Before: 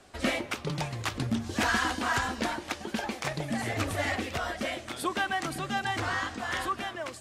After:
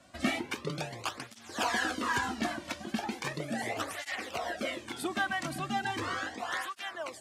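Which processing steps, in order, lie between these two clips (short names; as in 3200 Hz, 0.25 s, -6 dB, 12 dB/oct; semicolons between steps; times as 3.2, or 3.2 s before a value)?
tape flanging out of phase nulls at 0.37 Hz, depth 2.5 ms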